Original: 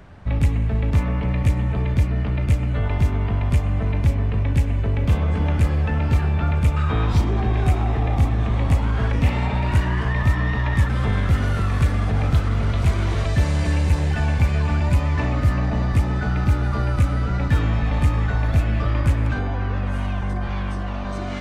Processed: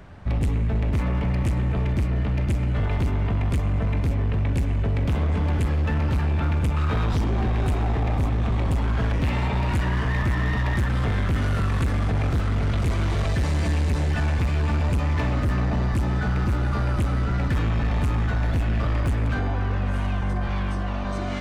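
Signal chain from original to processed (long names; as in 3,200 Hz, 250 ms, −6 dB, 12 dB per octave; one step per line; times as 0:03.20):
hard clipping −19 dBFS, distortion −9 dB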